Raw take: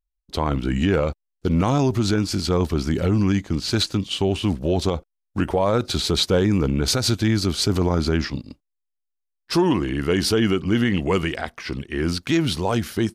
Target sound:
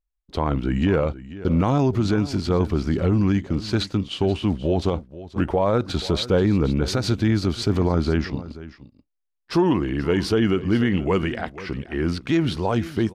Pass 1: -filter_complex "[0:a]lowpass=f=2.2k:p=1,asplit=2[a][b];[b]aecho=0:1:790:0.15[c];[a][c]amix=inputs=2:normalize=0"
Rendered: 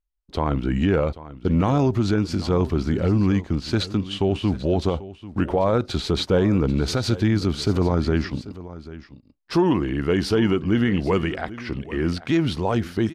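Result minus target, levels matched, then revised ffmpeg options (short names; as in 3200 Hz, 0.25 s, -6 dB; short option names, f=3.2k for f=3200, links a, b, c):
echo 0.307 s late
-filter_complex "[0:a]lowpass=f=2.2k:p=1,asplit=2[a][b];[b]aecho=0:1:483:0.15[c];[a][c]amix=inputs=2:normalize=0"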